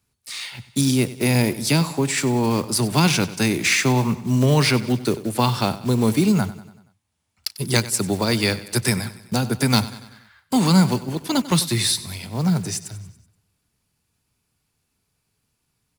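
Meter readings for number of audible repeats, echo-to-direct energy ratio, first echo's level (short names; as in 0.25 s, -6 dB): 4, -15.0 dB, -16.5 dB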